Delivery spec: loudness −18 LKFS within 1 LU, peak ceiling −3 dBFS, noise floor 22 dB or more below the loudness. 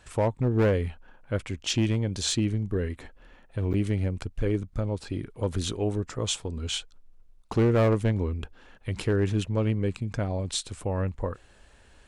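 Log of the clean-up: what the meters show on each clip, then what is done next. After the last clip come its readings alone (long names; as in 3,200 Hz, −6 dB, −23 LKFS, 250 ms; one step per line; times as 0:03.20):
share of clipped samples 1.0%; peaks flattened at −17.5 dBFS; number of dropouts 1; longest dropout 8.8 ms; integrated loudness −28.5 LKFS; sample peak −17.5 dBFS; target loudness −18.0 LKFS
→ clipped peaks rebuilt −17.5 dBFS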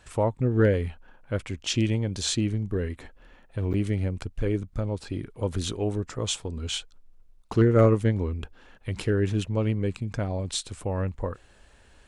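share of clipped samples 0.0%; number of dropouts 1; longest dropout 8.8 ms
→ repair the gap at 0:03.73, 8.8 ms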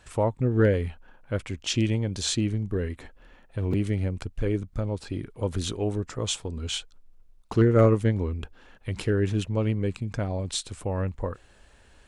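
number of dropouts 0; integrated loudness −27.5 LKFS; sample peak −8.5 dBFS; target loudness −18.0 LKFS
→ level +9.5 dB
brickwall limiter −3 dBFS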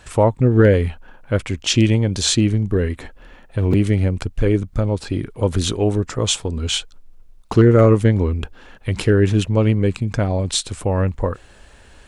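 integrated loudness −18.5 LKFS; sample peak −3.0 dBFS; background noise floor −46 dBFS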